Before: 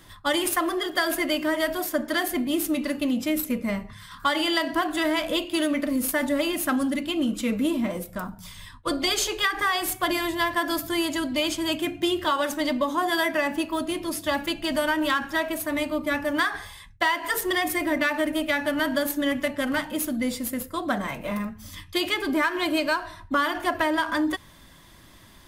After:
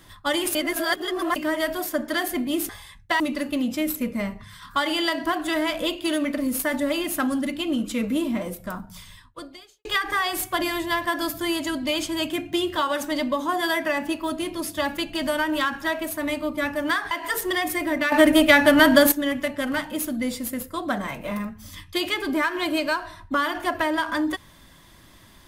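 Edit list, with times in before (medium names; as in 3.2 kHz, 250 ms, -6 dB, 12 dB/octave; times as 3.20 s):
0.55–1.36 s: reverse
8.46–9.34 s: fade out quadratic
16.60–17.11 s: move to 2.69 s
18.12–19.12 s: gain +10 dB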